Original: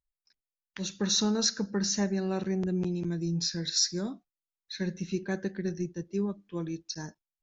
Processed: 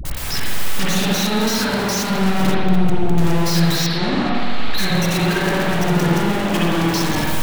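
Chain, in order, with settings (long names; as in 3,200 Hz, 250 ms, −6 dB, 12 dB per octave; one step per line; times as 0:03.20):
sign of each sample alone
0:02.49–0:03.13: low-shelf EQ 270 Hz +11.5 dB
0:03.81–0:04.73: elliptic low-pass filter 4,400 Hz
leveller curve on the samples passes 3
all-pass dispersion highs, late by 52 ms, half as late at 470 Hz
convolution reverb RT60 1.8 s, pre-delay 47 ms, DRR −6 dB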